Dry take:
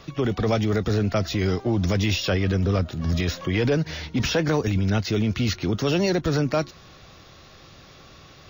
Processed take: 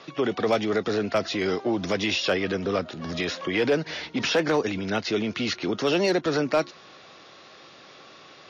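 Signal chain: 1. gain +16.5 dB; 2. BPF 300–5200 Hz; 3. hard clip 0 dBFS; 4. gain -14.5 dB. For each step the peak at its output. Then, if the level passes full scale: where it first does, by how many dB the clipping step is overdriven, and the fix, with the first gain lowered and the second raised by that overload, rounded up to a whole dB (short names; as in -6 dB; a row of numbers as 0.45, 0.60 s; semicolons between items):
+4.5, +4.5, 0.0, -14.5 dBFS; step 1, 4.5 dB; step 1 +11.5 dB, step 4 -9.5 dB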